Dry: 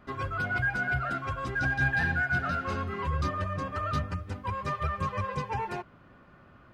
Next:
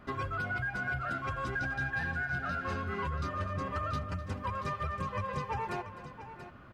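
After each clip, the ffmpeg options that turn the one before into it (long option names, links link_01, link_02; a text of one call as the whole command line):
ffmpeg -i in.wav -af "acompressor=threshold=-34dB:ratio=6,aecho=1:1:254|683:0.15|0.251,volume=2dB" out.wav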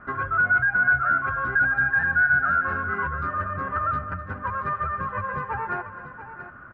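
ffmpeg -i in.wav -af "lowpass=frequency=1500:width_type=q:width=5.3,volume=2dB" out.wav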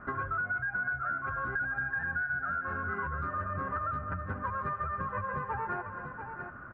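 ffmpeg -i in.wav -af "highshelf=frequency=2500:gain=-10,acompressor=threshold=-31dB:ratio=6" out.wav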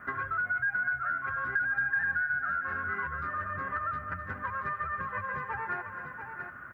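ffmpeg -i in.wav -af "highpass=53,equalizer=frequency=1900:width=3:gain=8,crystalizer=i=6.5:c=0,volume=-5dB" out.wav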